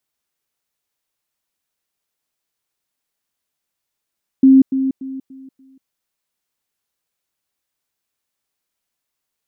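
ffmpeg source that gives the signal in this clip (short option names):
-f lavfi -i "aevalsrc='pow(10,(-5-10*floor(t/0.29))/20)*sin(2*PI*266*t)*clip(min(mod(t,0.29),0.19-mod(t,0.29))/0.005,0,1)':d=1.45:s=44100"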